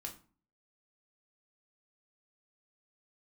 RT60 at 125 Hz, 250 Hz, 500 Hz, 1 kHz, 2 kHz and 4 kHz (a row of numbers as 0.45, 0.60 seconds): 0.55, 0.55, 0.40, 0.40, 0.30, 0.30 seconds